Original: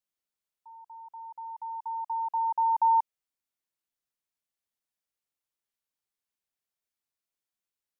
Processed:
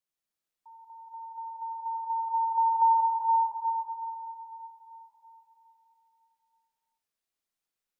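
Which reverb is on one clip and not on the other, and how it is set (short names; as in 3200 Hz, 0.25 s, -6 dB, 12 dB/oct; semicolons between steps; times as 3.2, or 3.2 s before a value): digital reverb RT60 3.8 s, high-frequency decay 0.85×, pre-delay 65 ms, DRR -2.5 dB; gain -2 dB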